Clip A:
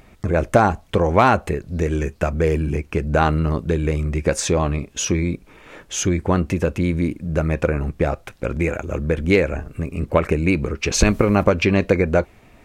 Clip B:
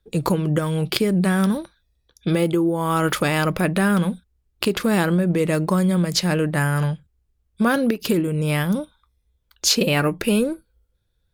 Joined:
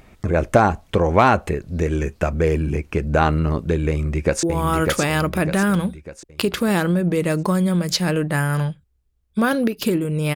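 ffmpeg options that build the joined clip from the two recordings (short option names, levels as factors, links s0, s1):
-filter_complex "[0:a]apad=whole_dur=10.35,atrim=end=10.35,atrim=end=4.432[s0];[1:a]atrim=start=2.658:end=8.58[s1];[s0][s1]acrossfade=d=0.004:c1=hsin:c2=hsin,asplit=2[s2][s3];[s3]afade=t=in:st=3.89:d=0.01,afade=t=out:st=4.43:d=0.01,aecho=0:1:600|1200|1800|2400|3000|3600:0.668344|0.300755|0.13534|0.0609028|0.0274063|0.0123328[s4];[s2][s4]amix=inputs=2:normalize=0"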